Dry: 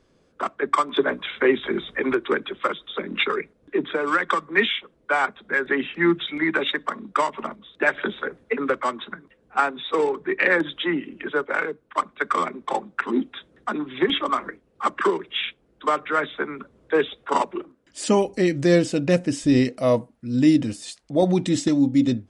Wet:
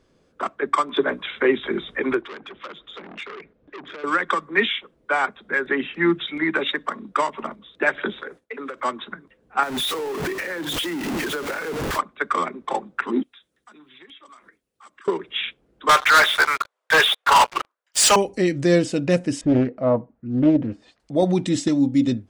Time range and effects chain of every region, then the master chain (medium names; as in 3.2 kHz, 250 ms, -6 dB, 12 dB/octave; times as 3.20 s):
2.21–4.04 s: compression 3:1, threshold -32 dBFS + low-pass 3.4 kHz + transformer saturation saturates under 2.1 kHz
8.21–8.81 s: expander -47 dBFS + tone controls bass -8 dB, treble +8 dB + compression 16:1, threshold -28 dBFS
9.63–11.99 s: jump at every zero crossing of -20 dBFS + compression 12:1, threshold -24 dBFS + three bands expanded up and down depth 70%
13.23–15.08 s: pre-emphasis filter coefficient 0.9 + compression 4:1, threshold -45 dBFS
15.89–18.16 s: high-pass 730 Hz 24 dB/octave + waveshaping leveller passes 5
19.41–21.00 s: low-pass 1.4 kHz + loudspeaker Doppler distortion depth 0.37 ms
whole clip: none